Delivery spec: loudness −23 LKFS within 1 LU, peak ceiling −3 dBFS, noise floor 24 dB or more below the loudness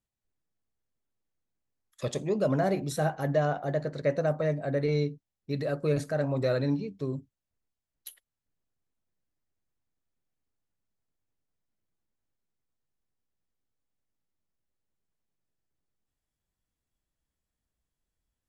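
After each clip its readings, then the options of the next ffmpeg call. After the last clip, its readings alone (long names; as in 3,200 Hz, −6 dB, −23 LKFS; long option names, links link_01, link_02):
integrated loudness −29.5 LKFS; sample peak −14.5 dBFS; target loudness −23.0 LKFS
→ -af "volume=6.5dB"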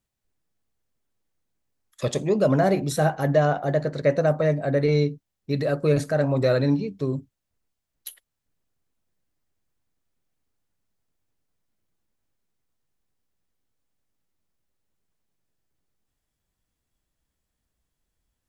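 integrated loudness −23.0 LKFS; sample peak −8.0 dBFS; background noise floor −82 dBFS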